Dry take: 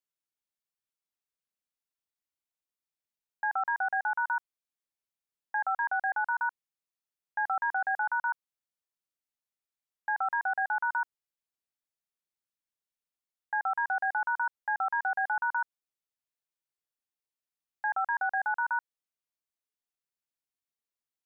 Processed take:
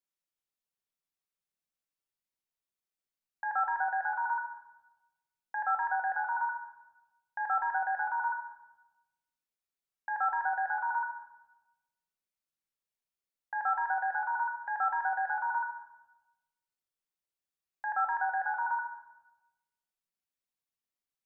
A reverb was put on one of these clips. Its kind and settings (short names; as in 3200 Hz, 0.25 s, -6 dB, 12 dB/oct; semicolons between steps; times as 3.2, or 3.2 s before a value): shoebox room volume 540 m³, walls mixed, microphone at 1.1 m; gain -3.5 dB